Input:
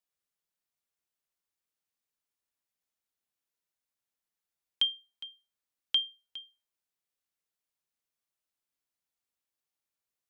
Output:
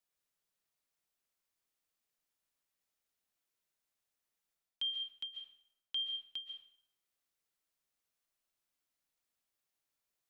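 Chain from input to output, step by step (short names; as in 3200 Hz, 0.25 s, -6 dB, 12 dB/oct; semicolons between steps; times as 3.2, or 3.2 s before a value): reverse; compressor 12:1, threshold -36 dBFS, peak gain reduction 14.5 dB; reverse; reverb RT60 0.70 s, pre-delay 0.1 s, DRR 5 dB; gain +1 dB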